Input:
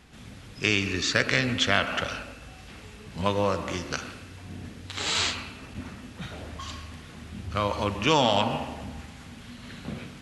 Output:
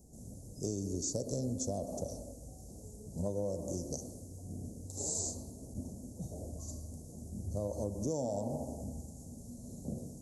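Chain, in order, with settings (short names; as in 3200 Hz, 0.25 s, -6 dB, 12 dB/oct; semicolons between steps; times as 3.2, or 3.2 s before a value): elliptic band-stop 630–6500 Hz, stop band 50 dB; high shelf 6100 Hz +8.5 dB; compressor 5:1, threshold -29 dBFS, peak gain reduction 8.5 dB; gain -3 dB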